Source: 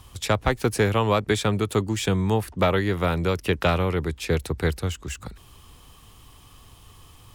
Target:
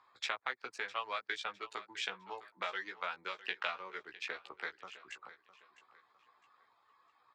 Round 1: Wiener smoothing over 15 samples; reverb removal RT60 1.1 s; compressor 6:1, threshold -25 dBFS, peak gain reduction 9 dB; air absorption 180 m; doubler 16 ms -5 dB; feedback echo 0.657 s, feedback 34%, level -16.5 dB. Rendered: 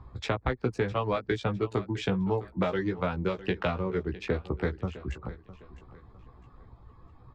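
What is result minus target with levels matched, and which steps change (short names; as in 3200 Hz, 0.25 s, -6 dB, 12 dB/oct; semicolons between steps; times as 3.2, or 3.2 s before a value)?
1000 Hz band -4.0 dB
add after compressor: HPF 1400 Hz 12 dB/oct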